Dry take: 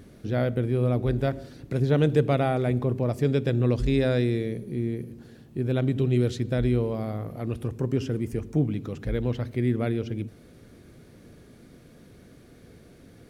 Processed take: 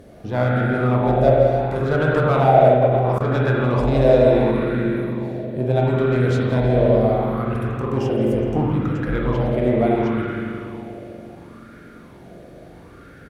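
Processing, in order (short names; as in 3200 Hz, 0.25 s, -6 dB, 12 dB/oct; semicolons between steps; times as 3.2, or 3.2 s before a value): one-sided clip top -26 dBFS; doubler 23 ms -12.5 dB; tape echo 0.168 s, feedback 39%, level -10 dB, low-pass 2400 Hz; spring tank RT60 3.2 s, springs 40/45 ms, chirp 55 ms, DRR -4 dB; 2.72–3.32 level quantiser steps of 21 dB; maximiser +9.5 dB; LFO bell 0.72 Hz 590–1500 Hz +14 dB; gain -9 dB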